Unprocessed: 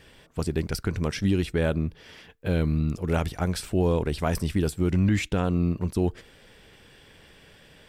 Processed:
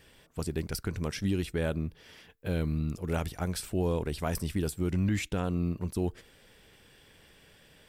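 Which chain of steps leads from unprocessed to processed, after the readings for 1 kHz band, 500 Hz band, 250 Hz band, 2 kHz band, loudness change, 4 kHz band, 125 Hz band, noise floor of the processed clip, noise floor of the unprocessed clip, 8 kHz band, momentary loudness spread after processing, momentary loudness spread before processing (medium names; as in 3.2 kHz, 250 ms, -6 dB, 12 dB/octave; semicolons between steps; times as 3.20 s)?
-6.0 dB, -6.0 dB, -6.0 dB, -5.5 dB, -6.0 dB, -4.5 dB, -6.0 dB, -59 dBFS, -54 dBFS, -2.0 dB, 6 LU, 6 LU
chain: treble shelf 8.8 kHz +9.5 dB; trim -6 dB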